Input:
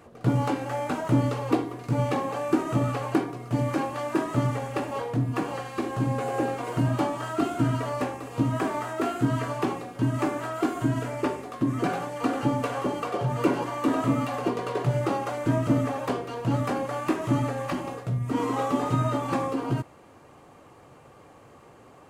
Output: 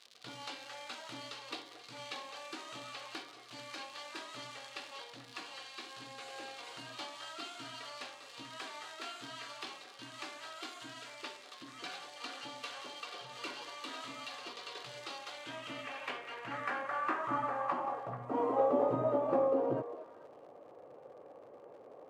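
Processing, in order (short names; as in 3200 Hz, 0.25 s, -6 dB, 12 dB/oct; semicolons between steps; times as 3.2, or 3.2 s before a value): crackle 110/s -34 dBFS; band-pass sweep 4000 Hz -> 530 Hz, 15.2–18.77; delay with a stepping band-pass 0.219 s, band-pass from 560 Hz, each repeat 1.4 oct, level -7.5 dB; gain +2.5 dB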